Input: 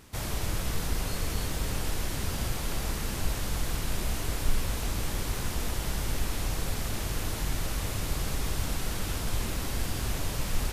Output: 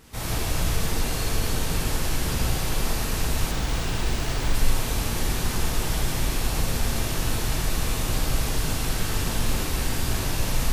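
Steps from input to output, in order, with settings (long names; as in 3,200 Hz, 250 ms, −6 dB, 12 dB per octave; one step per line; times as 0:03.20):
reverb whose tail is shaped and stops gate 200 ms flat, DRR −5 dB
0:03.51–0:04.55: windowed peak hold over 3 samples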